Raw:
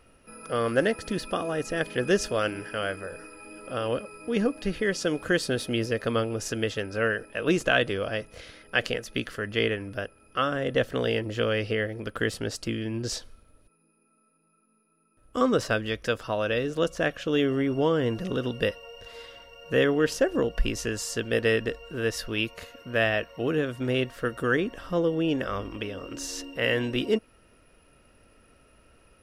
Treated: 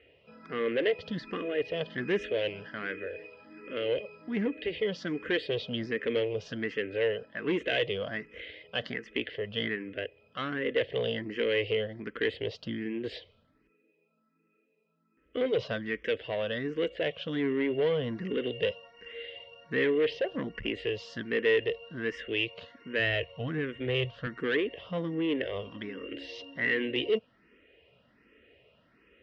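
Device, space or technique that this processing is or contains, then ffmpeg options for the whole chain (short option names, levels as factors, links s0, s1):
barber-pole phaser into a guitar amplifier: -filter_complex "[0:a]asplit=2[s0][s1];[s1]afreqshift=1.3[s2];[s0][s2]amix=inputs=2:normalize=1,asoftclip=type=tanh:threshold=0.0631,highpass=92,equalizer=f=110:t=q:w=4:g=-3,equalizer=f=440:t=q:w=4:g=6,equalizer=f=850:t=q:w=4:g=-6,equalizer=f=1300:t=q:w=4:g=-7,equalizer=f=2000:t=q:w=4:g=9,equalizer=f=3100:t=q:w=4:g=7,lowpass=f=3800:w=0.5412,lowpass=f=3800:w=1.3066,asettb=1/sr,asplit=3[s3][s4][s5];[s3]atrim=end=22.994[s6];[s4]atrim=start=22.99:end=24.27,asetpts=PTS-STARTPTS,afade=t=in:d=0.004:c=qsin,afade=t=out:st=1.276:d=0.004:c=qsin,lowshelf=f=140:t=q:w=1.5:g=9[s7];[s5]atrim=start=24.266[s8];[s6][s7]acrossfade=d=0.004:c1=hsin:c2=qsin[s9];[s9][s8]acrossfade=d=0.004:c1=qsin:c2=hsin,volume=0.891"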